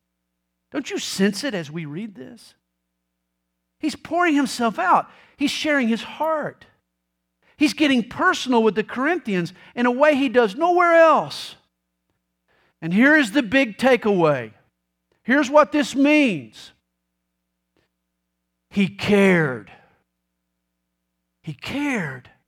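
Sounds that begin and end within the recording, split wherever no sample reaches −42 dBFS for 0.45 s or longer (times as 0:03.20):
0:00.72–0:02.49
0:03.83–0:06.64
0:07.59–0:11.54
0:12.82–0:14.52
0:15.27–0:16.70
0:18.71–0:19.76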